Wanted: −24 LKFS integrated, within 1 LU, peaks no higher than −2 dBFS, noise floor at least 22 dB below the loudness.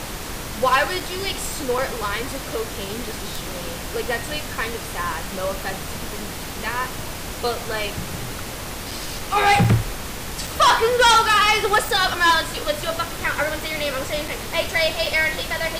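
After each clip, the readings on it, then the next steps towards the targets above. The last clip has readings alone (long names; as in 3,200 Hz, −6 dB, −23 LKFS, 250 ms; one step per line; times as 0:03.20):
number of dropouts 8; longest dropout 3.9 ms; background noise floor −32 dBFS; target noise floor −44 dBFS; integrated loudness −22.0 LKFS; sample peak −8.5 dBFS; target loudness −24.0 LKFS
→ repair the gap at 0:01.00/0:01.78/0:08.91/0:09.64/0:10.47/0:11.89/0:14.28/0:15.06, 3.9 ms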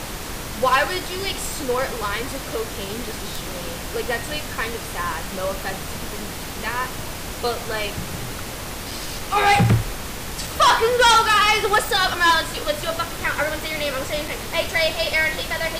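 number of dropouts 0; background noise floor −32 dBFS; target noise floor −44 dBFS
→ noise reduction from a noise print 12 dB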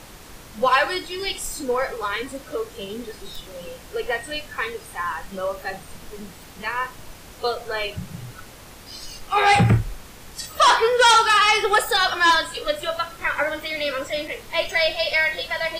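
background noise floor −43 dBFS; integrated loudness −21.0 LKFS; sample peak −8.5 dBFS; target loudness −24.0 LKFS
→ level −3 dB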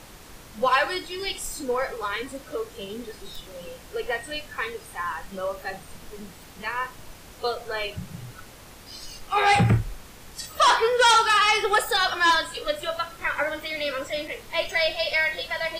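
integrated loudness −24.0 LKFS; sample peak −11.5 dBFS; background noise floor −46 dBFS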